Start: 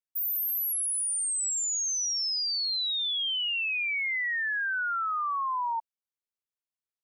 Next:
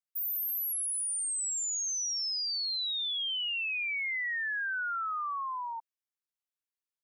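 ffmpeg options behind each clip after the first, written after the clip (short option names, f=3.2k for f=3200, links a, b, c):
-af "highpass=f=1k:w=0.5412,highpass=f=1k:w=1.3066,volume=-3.5dB"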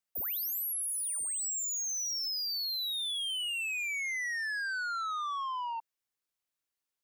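-af "asoftclip=type=tanh:threshold=-37.5dB,volume=4.5dB"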